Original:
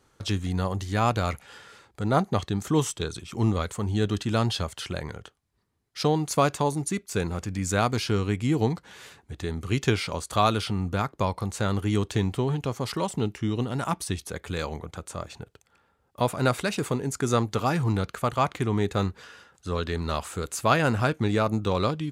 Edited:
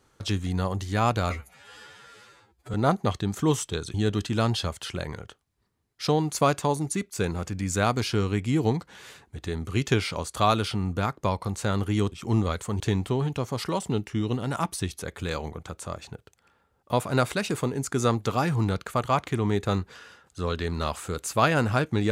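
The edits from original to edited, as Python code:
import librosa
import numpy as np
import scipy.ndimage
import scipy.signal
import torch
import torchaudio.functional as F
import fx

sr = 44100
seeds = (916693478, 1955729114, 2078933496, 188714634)

y = fx.edit(x, sr, fx.stretch_span(start_s=1.3, length_s=0.72, factor=2.0),
    fx.move(start_s=3.22, length_s=0.68, to_s=12.08), tone=tone)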